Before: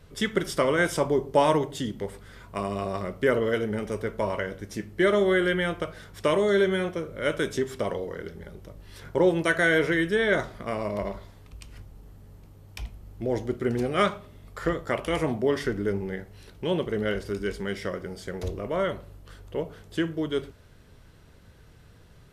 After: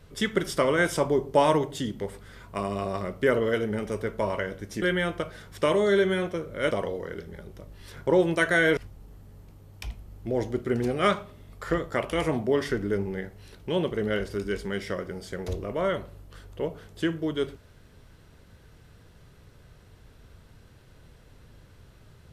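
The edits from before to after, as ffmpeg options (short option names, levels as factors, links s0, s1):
-filter_complex "[0:a]asplit=4[s0][s1][s2][s3];[s0]atrim=end=4.822[s4];[s1]atrim=start=5.438:end=7.332[s5];[s2]atrim=start=7.788:end=9.852[s6];[s3]atrim=start=11.718[s7];[s4][s5]acrossfade=d=0.004:c1=hsin:c2=hsin[s8];[s8][s6]acrossfade=d=0.004:c1=hsin:c2=hsin[s9];[s9][s7]acrossfade=d=0.004:c1=hsin:c2=hsin"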